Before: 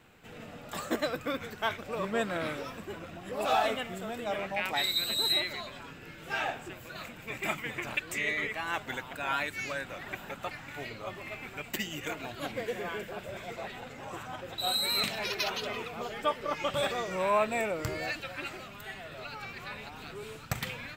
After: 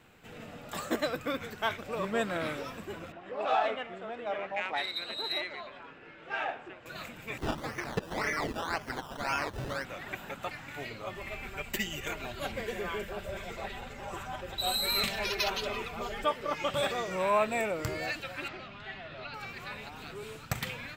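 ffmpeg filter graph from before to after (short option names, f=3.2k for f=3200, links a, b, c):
-filter_complex "[0:a]asettb=1/sr,asplit=3[a][b][c];[a]atrim=end=3.124[d];[b]atrim=start=3.12:end=6.86,asetpts=PTS-STARTPTS,afade=t=in:d=0.004:c=qsin,afade=t=out:st=3.736:d=0.004:c=qsin,lowpass=9.7k,bass=f=250:g=-13,treble=f=4k:g=-4,adynamicsmooth=sensitivity=1:basefreq=3.3k[e];[c]atrim=start=6.856[f];[d][e]acrossfade=d=0.004:c1=hsin:c2=qsin[g];[g][f]acrossfade=d=0.004:c1=qsin:c2=hsin,asettb=1/sr,asplit=3[h][i][j];[h]atrim=end=7.384[k];[i]atrim=start=7.38:end=9.85,asetpts=PTS-STARTPTS,afade=t=in:d=0.004:c=qsin,afade=t=out:st=2.466:d=0.004:c=qsin,acrusher=samples=16:mix=1:aa=0.000001:lfo=1:lforange=9.6:lforate=1.9,acrossover=split=5600[l][m];[m]acompressor=threshold=-52dB:ratio=4:attack=1:release=60[n];[l][n]amix=inputs=2:normalize=0[o];[j]atrim=start=9.846[p];[k][o]acrossfade=d=0.004:c1=hsin:c2=qsin[q];[q][p]acrossfade=d=0.004:c1=qsin:c2=hsin,asettb=1/sr,asplit=3[r][s][t];[r]atrim=end=11.154[u];[s]atrim=start=11.15:end=16.24,asetpts=PTS-STARTPTS,afade=t=in:d=0.004:c=qsin,afade=t=out:st=5.086:d=0.004:c=qsin,lowshelf=f=110:t=q:w=1.5:g=10.5,aecho=1:1:5.1:0.52,atrim=end_sample=224469[v];[t]atrim=start=16.236[w];[u][v]acrossfade=d=0.004:c1=hsin:c2=qsin[x];[x][w]acrossfade=d=0.004:c1=qsin:c2=hsin,asettb=1/sr,asplit=3[y][z][aa];[y]atrim=end=18.484[ab];[z]atrim=start=18.48:end=19.34,asetpts=PTS-STARTPTS,afade=t=in:d=0.004:c=qsin,afade=t=out:st=0.856:d=0.004:c=qsin,lowpass=f=4.7k:w=0.5412,lowpass=f=4.7k:w=1.3066,bandreject=f=460:w=6.9[ac];[aa]atrim=start=19.336[ad];[ab][ac]acrossfade=d=0.004:c1=hsin:c2=qsin[ae];[ae][ad]acrossfade=d=0.004:c1=qsin:c2=hsin"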